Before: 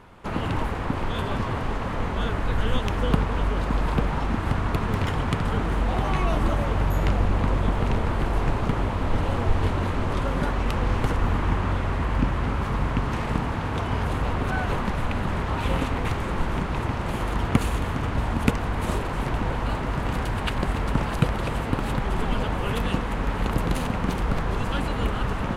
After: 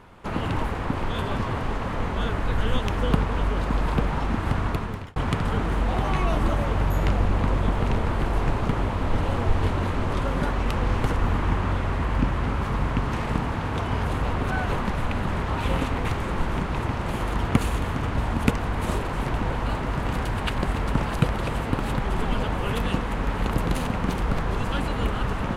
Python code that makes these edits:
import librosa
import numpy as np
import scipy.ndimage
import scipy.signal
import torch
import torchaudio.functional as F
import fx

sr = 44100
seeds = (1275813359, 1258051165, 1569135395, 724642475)

y = fx.edit(x, sr, fx.fade_out_span(start_s=4.66, length_s=0.5), tone=tone)